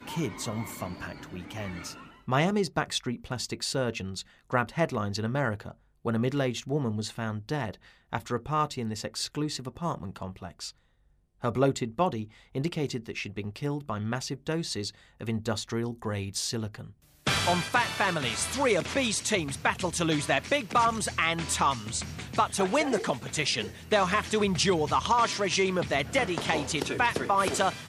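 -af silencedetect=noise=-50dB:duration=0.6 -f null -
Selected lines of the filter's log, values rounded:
silence_start: 10.71
silence_end: 11.42 | silence_duration: 0.71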